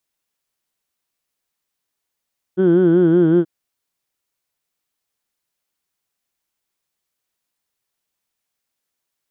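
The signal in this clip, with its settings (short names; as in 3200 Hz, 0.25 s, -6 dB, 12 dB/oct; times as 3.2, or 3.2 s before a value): formant vowel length 0.88 s, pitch 180 Hz, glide -1.5 st, vibrato depth 1.05 st, F1 350 Hz, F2 1500 Hz, F3 3200 Hz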